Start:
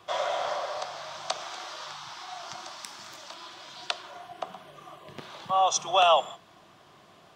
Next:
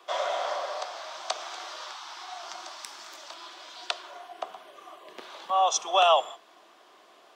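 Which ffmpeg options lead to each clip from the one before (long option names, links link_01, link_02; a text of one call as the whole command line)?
ffmpeg -i in.wav -af "highpass=frequency=310:width=0.5412,highpass=frequency=310:width=1.3066" out.wav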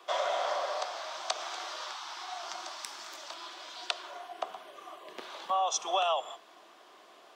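ffmpeg -i in.wav -af "acompressor=threshold=-26dB:ratio=6" out.wav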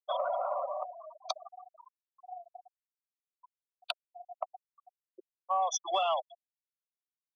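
ffmpeg -i in.wav -af "afftfilt=real='re*gte(hypot(re,im),0.0562)':imag='im*gte(hypot(re,im),0.0562)':win_size=1024:overlap=0.75,asoftclip=type=tanh:threshold=-15dB" out.wav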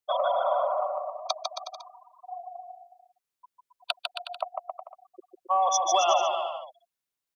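ffmpeg -i in.wav -af "aecho=1:1:150|270|366|442.8|504.2:0.631|0.398|0.251|0.158|0.1,volume=5.5dB" out.wav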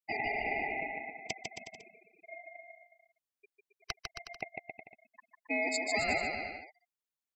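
ffmpeg -i in.wav -af "aeval=exprs='val(0)*sin(2*PI*1400*n/s)':channel_layout=same,volume=-6dB" out.wav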